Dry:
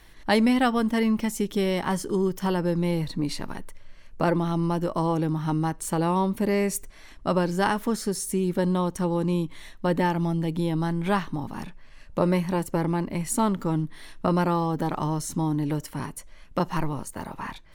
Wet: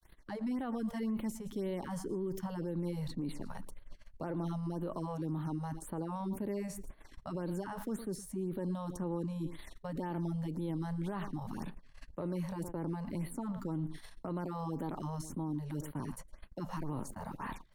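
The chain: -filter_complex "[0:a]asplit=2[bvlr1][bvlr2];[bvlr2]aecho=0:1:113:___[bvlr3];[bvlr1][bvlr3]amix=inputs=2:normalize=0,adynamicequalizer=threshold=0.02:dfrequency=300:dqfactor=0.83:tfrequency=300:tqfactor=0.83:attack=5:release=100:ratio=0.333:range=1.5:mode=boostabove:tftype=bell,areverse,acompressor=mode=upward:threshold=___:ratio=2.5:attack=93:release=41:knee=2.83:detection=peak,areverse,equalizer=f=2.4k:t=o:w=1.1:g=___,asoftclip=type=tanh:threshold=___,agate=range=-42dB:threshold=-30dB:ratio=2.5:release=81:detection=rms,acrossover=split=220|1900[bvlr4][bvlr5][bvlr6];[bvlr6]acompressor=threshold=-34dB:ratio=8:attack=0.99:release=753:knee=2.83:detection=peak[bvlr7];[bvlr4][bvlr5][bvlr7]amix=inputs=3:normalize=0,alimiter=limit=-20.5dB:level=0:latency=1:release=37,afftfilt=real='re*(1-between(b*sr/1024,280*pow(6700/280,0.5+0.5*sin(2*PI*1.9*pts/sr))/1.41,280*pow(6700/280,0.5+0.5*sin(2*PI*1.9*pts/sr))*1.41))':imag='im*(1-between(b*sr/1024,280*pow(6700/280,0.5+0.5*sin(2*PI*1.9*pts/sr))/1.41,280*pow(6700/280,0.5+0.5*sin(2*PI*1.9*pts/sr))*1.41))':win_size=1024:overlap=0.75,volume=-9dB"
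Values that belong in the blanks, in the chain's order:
0.1, -32dB, -4.5, -10dB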